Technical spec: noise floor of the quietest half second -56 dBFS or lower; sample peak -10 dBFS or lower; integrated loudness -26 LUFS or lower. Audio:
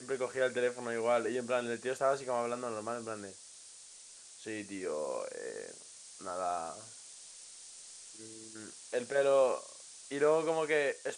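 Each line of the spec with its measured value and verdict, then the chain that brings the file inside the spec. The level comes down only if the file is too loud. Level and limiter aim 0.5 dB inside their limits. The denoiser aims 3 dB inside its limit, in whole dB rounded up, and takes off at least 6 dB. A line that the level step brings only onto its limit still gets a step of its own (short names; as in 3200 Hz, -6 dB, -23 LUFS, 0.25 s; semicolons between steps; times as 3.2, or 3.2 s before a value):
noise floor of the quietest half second -54 dBFS: fail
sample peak -17.5 dBFS: OK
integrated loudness -34.0 LUFS: OK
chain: denoiser 6 dB, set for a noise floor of -54 dBFS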